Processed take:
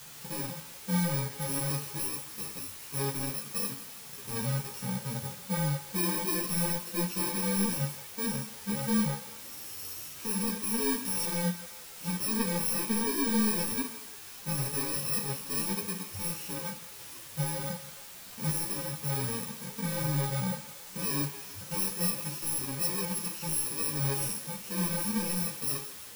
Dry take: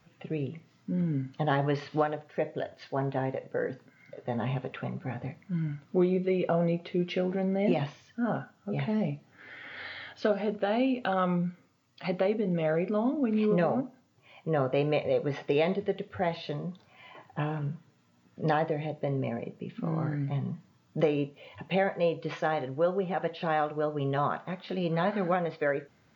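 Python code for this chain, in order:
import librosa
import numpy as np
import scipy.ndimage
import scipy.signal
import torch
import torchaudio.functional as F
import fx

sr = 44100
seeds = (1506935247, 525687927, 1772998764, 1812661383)

p1 = fx.bit_reversed(x, sr, seeds[0], block=64)
p2 = 10.0 ** (-30.5 / 20.0) * np.tanh(p1 / 10.0 ** (-30.5 / 20.0))
p3 = fx.quant_dither(p2, sr, seeds[1], bits=8, dither='triangular')
p4 = fx.hpss(p3, sr, part='percussive', gain_db=-15)
p5 = p4 + fx.echo_thinned(p4, sr, ms=166, feedback_pct=59, hz=420.0, wet_db=-13.5, dry=0)
p6 = fx.ensemble(p5, sr)
y = F.gain(torch.from_numpy(p6), 8.5).numpy()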